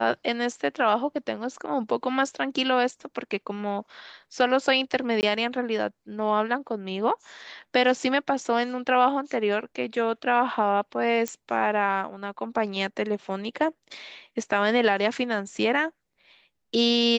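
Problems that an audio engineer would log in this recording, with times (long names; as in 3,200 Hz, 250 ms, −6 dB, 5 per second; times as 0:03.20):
0:05.21–0:05.23: drop-out 19 ms
0:11.28: click −14 dBFS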